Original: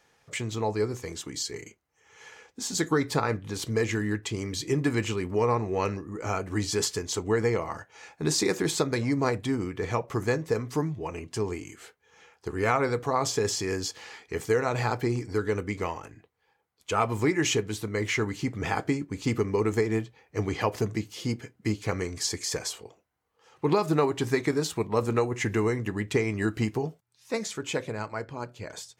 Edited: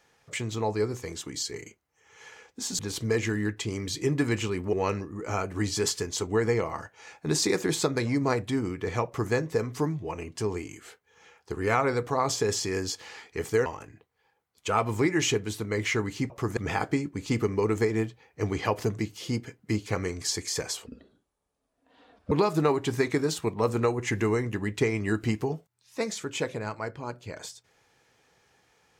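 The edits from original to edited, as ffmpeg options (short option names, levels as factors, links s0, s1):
-filter_complex "[0:a]asplit=8[s0][s1][s2][s3][s4][s5][s6][s7];[s0]atrim=end=2.792[s8];[s1]atrim=start=3.448:end=5.392[s9];[s2]atrim=start=5.688:end=14.622[s10];[s3]atrim=start=15.888:end=18.532[s11];[s4]atrim=start=10.018:end=10.292[s12];[s5]atrim=start=18.528:end=22.824[s13];[s6]atrim=start=22.82:end=23.65,asetpts=PTS-STARTPTS,asetrate=25137,aresample=44100[s14];[s7]atrim=start=23.646[s15];[s8][s9]acrossfade=d=0.004:c1=hsin:c2=hsin[s16];[s16][s10]acrossfade=d=0.004:c1=hsin:c2=hsin[s17];[s17][s11]acrossfade=d=0.004:c1=hsin:c2=hsin[s18];[s18][s12]acrossfade=d=0.004:c1=hsin:c2=hsin[s19];[s19][s13]acrossfade=d=0.004:c1=hsin:c2=hsin[s20];[s20][s14]acrossfade=d=0.004:c1=hsin:c2=hsin[s21];[s21][s15]acrossfade=d=0.004:c1=hsin:c2=hsin"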